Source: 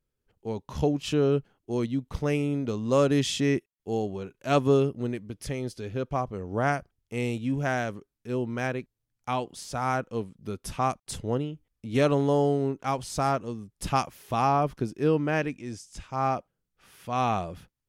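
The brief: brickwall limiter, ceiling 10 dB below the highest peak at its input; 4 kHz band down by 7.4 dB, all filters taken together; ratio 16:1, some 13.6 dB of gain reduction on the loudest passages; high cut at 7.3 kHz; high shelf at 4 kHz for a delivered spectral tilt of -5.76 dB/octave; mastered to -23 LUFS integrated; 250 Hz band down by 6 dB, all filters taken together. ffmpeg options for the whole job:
-af "lowpass=7300,equalizer=f=250:t=o:g=-7.5,highshelf=f=4000:g=-8,equalizer=f=4000:t=o:g=-5,acompressor=threshold=0.0224:ratio=16,volume=10.6,alimiter=limit=0.237:level=0:latency=1"

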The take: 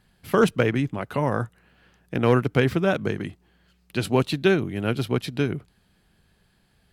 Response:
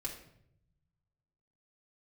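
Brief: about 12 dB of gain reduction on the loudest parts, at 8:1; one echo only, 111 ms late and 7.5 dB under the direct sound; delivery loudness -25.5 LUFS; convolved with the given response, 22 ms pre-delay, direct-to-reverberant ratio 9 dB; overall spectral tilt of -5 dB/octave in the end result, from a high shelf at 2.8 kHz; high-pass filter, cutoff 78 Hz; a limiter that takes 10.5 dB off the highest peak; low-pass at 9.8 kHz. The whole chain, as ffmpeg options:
-filter_complex "[0:a]highpass=78,lowpass=9800,highshelf=f=2800:g=4.5,acompressor=threshold=0.0501:ratio=8,alimiter=limit=0.075:level=0:latency=1,aecho=1:1:111:0.422,asplit=2[s0][s1];[1:a]atrim=start_sample=2205,adelay=22[s2];[s1][s2]afir=irnorm=-1:irlink=0,volume=0.376[s3];[s0][s3]amix=inputs=2:normalize=0,volume=2.66"

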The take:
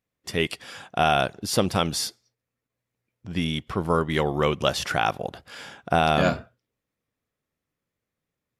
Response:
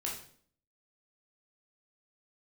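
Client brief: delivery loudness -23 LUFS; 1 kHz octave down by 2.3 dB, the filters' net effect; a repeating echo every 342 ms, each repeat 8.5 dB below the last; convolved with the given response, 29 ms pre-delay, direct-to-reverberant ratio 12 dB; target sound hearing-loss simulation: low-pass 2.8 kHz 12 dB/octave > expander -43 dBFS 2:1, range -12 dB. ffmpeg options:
-filter_complex "[0:a]equalizer=f=1000:t=o:g=-3.5,aecho=1:1:342|684|1026|1368:0.376|0.143|0.0543|0.0206,asplit=2[s0][s1];[1:a]atrim=start_sample=2205,adelay=29[s2];[s1][s2]afir=irnorm=-1:irlink=0,volume=0.2[s3];[s0][s3]amix=inputs=2:normalize=0,lowpass=2800,agate=range=0.251:threshold=0.00708:ratio=2,volume=1.41"

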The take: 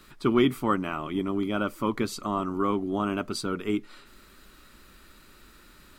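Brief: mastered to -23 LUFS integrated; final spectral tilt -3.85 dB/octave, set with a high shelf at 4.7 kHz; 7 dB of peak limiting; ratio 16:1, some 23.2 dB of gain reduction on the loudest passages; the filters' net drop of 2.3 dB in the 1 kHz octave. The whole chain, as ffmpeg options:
-af "equalizer=f=1000:t=o:g=-3.5,highshelf=f=4700:g=9,acompressor=threshold=0.01:ratio=16,volume=17.8,alimiter=limit=0.251:level=0:latency=1"

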